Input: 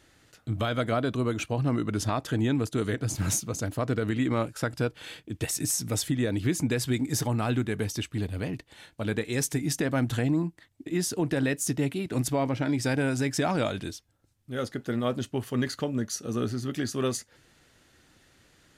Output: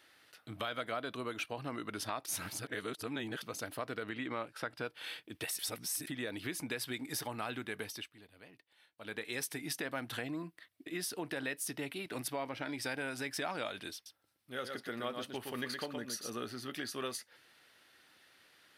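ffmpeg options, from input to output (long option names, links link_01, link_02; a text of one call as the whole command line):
ffmpeg -i in.wav -filter_complex "[0:a]asettb=1/sr,asplit=3[link_01][link_02][link_03];[link_01]atrim=end=4.034[link_04];[link_02]atrim=start=4.03:end=4.85,asetpts=PTS-STARTPTS,afade=type=in:duration=0.004:curve=qsin,afade=type=out:start_time=0.816:duration=0.004:curve=qsin,highshelf=frequency=6700:gain=-12[link_05];[link_03]atrim=start=4.846[link_06];[link_04][link_05]acrossfade=duration=0.004:curve1=hsin:curve2=qsin[link_07];[link_07][link_06]acrossfade=duration=0.004:curve1=qsin:curve2=hsin,asettb=1/sr,asplit=3[link_08][link_09][link_10];[link_08]atrim=end=10.274[link_11];[link_09]atrim=start=10.27:end=11.07,asetpts=PTS-STARTPTS,afade=type=in:duration=0.004:curve=qsin,afade=type=out:start_time=0.796:duration=0.004:curve=qsin,asuperstop=centerf=860:order=4:qfactor=5.3[link_12];[link_10]atrim=start=11.066[link_13];[link_11][link_12]acrossfade=duration=0.004:curve1=hsin:curve2=qsin[link_14];[link_14][link_13]acrossfade=duration=0.004:curve1=qsin:curve2=hsin,asettb=1/sr,asplit=3[link_15][link_16][link_17];[link_15]atrim=end=13.944[link_18];[link_16]atrim=start=13.94:end=16.3,asetpts=PTS-STARTPTS,afade=type=in:duration=0.004:curve=qsin,afade=type=out:start_time=2.356:duration=0.004:curve=qsin,aecho=1:1:117:0.501,atrim=end_sample=104076[link_19];[link_17]atrim=start=16.296[link_20];[link_18][link_19]acrossfade=duration=0.004:curve1=hsin:curve2=qsin[link_21];[link_21][link_20]acrossfade=duration=0.004:curve1=qsin:curve2=hsin,asplit=7[link_22][link_23][link_24][link_25][link_26][link_27][link_28];[link_22]atrim=end=2.262[link_29];[link_23]atrim=start=2.258:end=3.422,asetpts=PTS-STARTPTS,areverse[link_30];[link_24]atrim=start=3.418:end=5.592[link_31];[link_25]atrim=start=5.588:end=6.072,asetpts=PTS-STARTPTS,areverse[link_32];[link_26]atrim=start=6.068:end=8.14,asetpts=PTS-STARTPTS,afade=type=out:start_time=1.732:duration=0.34:silence=0.158489[link_33];[link_27]atrim=start=8.14:end=8.96,asetpts=PTS-STARTPTS,volume=-16dB[link_34];[link_28]atrim=start=8.96,asetpts=PTS-STARTPTS,afade=type=in:duration=0.34:silence=0.158489[link_35];[link_29][link_30]acrossfade=duration=0.004:curve1=hsin:curve2=hsin[link_36];[link_36][link_31]acrossfade=duration=0.004:curve1=hsin:curve2=hsin[link_37];[link_37][link_32]acrossfade=duration=0.004:curve1=hsin:curve2=hsin[link_38];[link_33][link_34][link_35]concat=n=3:v=0:a=1[link_39];[link_38][link_39]acrossfade=duration=0.004:curve1=hsin:curve2=hsin,highpass=frequency=1100:poles=1,equalizer=frequency=7000:width=2.4:gain=-13,acompressor=threshold=-39dB:ratio=2,volume=1dB" out.wav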